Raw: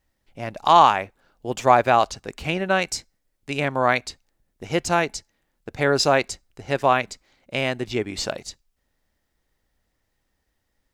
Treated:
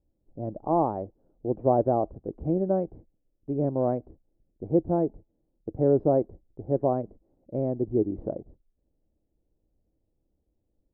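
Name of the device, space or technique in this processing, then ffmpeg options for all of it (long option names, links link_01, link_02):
under water: -af "lowpass=frequency=580:width=0.5412,lowpass=frequency=580:width=1.3066,equalizer=frequency=320:width_type=o:width=0.2:gain=6.5"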